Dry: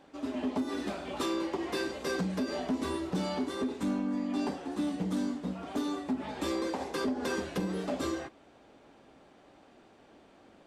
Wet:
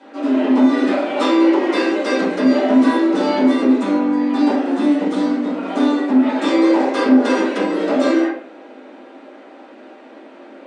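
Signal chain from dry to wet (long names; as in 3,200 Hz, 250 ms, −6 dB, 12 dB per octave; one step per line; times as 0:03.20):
Chebyshev band-pass filter 260–9,300 Hz, order 4
convolution reverb RT60 0.55 s, pre-delay 3 ms, DRR −12 dB
level +5.5 dB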